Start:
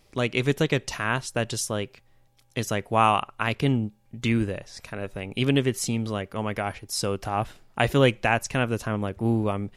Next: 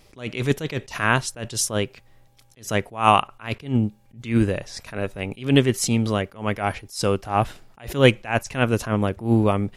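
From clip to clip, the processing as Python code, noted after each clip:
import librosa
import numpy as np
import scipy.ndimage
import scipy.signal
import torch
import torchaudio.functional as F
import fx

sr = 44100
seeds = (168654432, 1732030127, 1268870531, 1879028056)

y = fx.attack_slew(x, sr, db_per_s=180.0)
y = y * 10.0 ** (6.5 / 20.0)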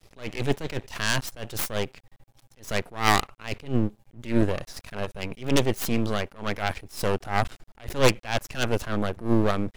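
y = fx.self_delay(x, sr, depth_ms=0.28)
y = fx.low_shelf(y, sr, hz=160.0, db=3.5)
y = np.maximum(y, 0.0)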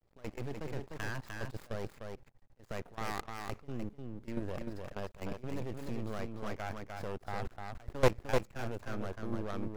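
y = scipy.signal.medfilt(x, 15)
y = fx.level_steps(y, sr, step_db=17)
y = y + 10.0 ** (-4.5 / 20.0) * np.pad(y, (int(301 * sr / 1000.0), 0))[:len(y)]
y = y * 10.0 ** (-3.5 / 20.0)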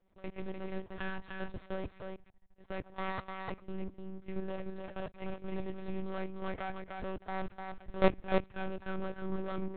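y = fx.lpc_monotone(x, sr, seeds[0], pitch_hz=190.0, order=10)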